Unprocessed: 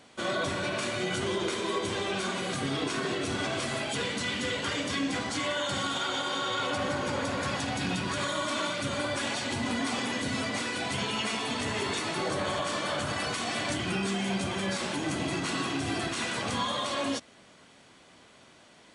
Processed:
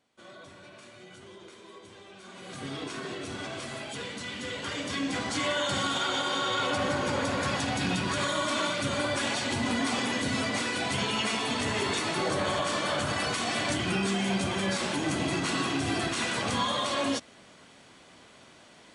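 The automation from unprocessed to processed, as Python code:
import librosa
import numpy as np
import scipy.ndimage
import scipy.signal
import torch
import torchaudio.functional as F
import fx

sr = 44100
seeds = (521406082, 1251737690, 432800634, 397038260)

y = fx.gain(x, sr, db=fx.line((2.18, -18.5), (2.66, -6.0), (4.31, -6.0), (5.45, 2.0)))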